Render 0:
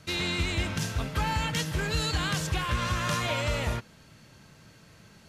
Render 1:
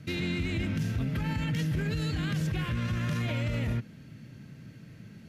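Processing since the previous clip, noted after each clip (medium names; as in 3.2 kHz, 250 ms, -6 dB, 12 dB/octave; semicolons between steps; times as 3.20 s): graphic EQ 125/250/1000/2000/4000/8000 Hz +10/+10/-8/+4/-3/-7 dB; peak limiter -21 dBFS, peak gain reduction 10.5 dB; trim -2 dB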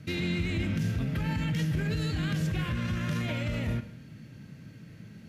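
reverberation, pre-delay 3 ms, DRR 10 dB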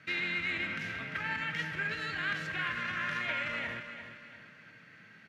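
band-pass filter 1.7 kHz, Q 1.8; feedback delay 347 ms, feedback 41%, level -10 dB; trim +8 dB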